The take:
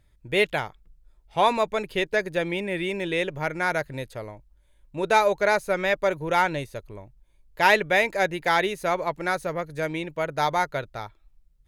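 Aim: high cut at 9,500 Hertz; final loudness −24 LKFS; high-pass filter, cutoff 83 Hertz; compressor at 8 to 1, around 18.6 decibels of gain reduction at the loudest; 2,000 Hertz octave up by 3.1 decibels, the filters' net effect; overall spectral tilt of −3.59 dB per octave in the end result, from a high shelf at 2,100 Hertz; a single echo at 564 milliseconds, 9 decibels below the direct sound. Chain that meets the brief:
high-pass filter 83 Hz
low-pass filter 9,500 Hz
parametric band 2,000 Hz +6.5 dB
high-shelf EQ 2,100 Hz −5 dB
downward compressor 8 to 1, threshold −32 dBFS
single-tap delay 564 ms −9 dB
level +12.5 dB

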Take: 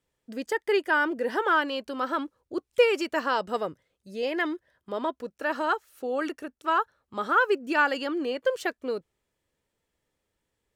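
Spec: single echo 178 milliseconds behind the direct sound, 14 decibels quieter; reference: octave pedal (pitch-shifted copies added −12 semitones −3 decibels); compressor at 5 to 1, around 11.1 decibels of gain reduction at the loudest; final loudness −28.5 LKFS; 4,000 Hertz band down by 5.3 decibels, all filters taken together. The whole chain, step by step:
parametric band 4,000 Hz −8.5 dB
downward compressor 5 to 1, threshold −27 dBFS
single-tap delay 178 ms −14 dB
pitch-shifted copies added −12 semitones −3 dB
level +3 dB

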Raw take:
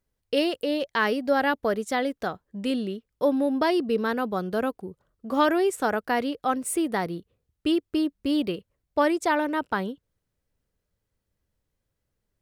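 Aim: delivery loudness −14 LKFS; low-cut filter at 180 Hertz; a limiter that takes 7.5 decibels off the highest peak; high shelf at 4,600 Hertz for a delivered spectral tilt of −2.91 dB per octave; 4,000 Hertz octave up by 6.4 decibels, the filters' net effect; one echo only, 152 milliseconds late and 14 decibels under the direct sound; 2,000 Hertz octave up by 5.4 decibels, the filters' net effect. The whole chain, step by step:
high-pass filter 180 Hz
parametric band 2,000 Hz +5.5 dB
parametric band 4,000 Hz +4 dB
high-shelf EQ 4,600 Hz +5 dB
brickwall limiter −13.5 dBFS
single-tap delay 152 ms −14 dB
level +12 dB

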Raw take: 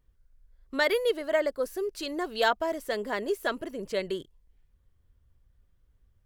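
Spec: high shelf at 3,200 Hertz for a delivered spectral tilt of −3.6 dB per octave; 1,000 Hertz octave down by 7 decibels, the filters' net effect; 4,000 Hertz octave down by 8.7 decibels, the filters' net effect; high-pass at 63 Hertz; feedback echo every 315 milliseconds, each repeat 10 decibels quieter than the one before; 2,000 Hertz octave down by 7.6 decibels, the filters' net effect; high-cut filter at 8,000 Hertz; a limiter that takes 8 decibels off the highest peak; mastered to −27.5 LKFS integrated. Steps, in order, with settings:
high-pass filter 63 Hz
low-pass filter 8,000 Hz
parametric band 1,000 Hz −8 dB
parametric band 2,000 Hz −4 dB
high-shelf EQ 3,200 Hz −5.5 dB
parametric band 4,000 Hz −5 dB
brickwall limiter −25 dBFS
repeating echo 315 ms, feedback 32%, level −10 dB
level +7.5 dB

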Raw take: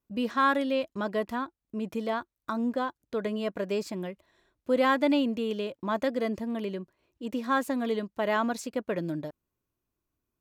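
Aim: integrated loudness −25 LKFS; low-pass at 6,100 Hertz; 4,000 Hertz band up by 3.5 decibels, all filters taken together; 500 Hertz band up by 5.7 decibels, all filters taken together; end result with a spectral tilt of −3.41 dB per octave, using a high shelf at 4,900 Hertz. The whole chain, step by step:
low-pass filter 6,100 Hz
parametric band 500 Hz +6.5 dB
parametric band 4,000 Hz +8.5 dB
high-shelf EQ 4,900 Hz −8 dB
level +1.5 dB

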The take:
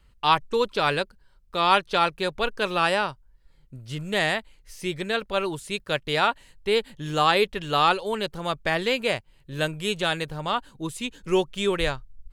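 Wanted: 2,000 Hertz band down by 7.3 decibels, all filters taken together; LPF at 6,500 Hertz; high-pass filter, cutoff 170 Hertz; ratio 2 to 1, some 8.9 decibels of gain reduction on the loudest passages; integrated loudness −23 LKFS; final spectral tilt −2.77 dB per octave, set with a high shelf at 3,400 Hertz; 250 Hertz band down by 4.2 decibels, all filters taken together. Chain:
high-pass filter 170 Hz
low-pass filter 6,500 Hz
parametric band 250 Hz −5 dB
parametric band 2,000 Hz −9 dB
high-shelf EQ 3,400 Hz −3.5 dB
downward compressor 2 to 1, threshold −34 dBFS
level +12 dB

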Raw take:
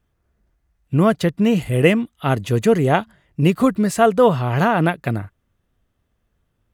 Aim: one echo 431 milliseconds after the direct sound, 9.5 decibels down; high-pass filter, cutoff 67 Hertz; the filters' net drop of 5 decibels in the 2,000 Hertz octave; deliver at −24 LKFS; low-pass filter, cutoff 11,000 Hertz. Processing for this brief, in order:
high-pass filter 67 Hz
low-pass filter 11,000 Hz
parametric band 2,000 Hz −7 dB
single-tap delay 431 ms −9.5 dB
level −6 dB

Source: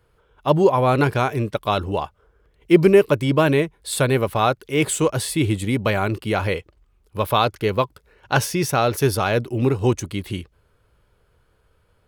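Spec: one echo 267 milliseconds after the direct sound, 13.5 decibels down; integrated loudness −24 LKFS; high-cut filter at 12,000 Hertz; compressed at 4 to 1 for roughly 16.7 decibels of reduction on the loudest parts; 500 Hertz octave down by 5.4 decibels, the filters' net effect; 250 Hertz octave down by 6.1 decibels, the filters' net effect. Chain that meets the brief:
low-pass filter 12,000 Hz
parametric band 250 Hz −7.5 dB
parametric band 500 Hz −4.5 dB
downward compressor 4 to 1, threshold −35 dBFS
single-tap delay 267 ms −13.5 dB
level +12.5 dB

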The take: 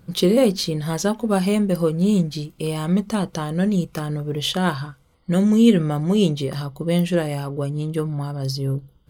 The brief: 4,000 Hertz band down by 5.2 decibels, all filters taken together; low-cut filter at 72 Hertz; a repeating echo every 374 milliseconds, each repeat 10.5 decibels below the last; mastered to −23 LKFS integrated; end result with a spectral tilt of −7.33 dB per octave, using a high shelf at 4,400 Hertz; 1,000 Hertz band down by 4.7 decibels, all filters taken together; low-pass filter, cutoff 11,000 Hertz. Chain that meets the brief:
high-pass filter 72 Hz
low-pass filter 11,000 Hz
parametric band 1,000 Hz −6 dB
parametric band 4,000 Hz −3 dB
high-shelf EQ 4,400 Hz −6.5 dB
repeating echo 374 ms, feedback 30%, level −10.5 dB
level −1.5 dB

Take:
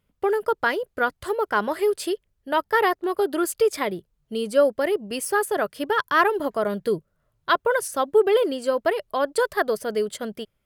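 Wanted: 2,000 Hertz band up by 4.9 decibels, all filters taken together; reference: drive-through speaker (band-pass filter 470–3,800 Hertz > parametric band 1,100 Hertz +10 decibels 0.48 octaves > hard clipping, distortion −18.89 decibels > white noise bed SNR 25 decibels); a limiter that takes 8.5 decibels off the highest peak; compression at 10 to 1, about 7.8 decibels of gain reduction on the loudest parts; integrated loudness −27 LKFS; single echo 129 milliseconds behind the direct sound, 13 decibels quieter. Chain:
parametric band 2,000 Hz +4.5 dB
downward compressor 10 to 1, threshold −20 dBFS
brickwall limiter −19 dBFS
band-pass filter 470–3,800 Hz
parametric band 1,100 Hz +10 dB 0.48 octaves
single-tap delay 129 ms −13 dB
hard clipping −19 dBFS
white noise bed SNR 25 dB
level +2 dB

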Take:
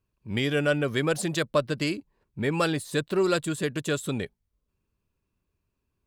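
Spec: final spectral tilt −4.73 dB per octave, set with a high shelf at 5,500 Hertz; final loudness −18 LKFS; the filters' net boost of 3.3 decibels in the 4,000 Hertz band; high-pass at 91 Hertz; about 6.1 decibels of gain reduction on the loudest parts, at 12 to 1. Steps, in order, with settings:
high-pass filter 91 Hz
parametric band 4,000 Hz +5.5 dB
high-shelf EQ 5,500 Hz −4 dB
downward compressor 12 to 1, threshold −25 dBFS
level +13 dB

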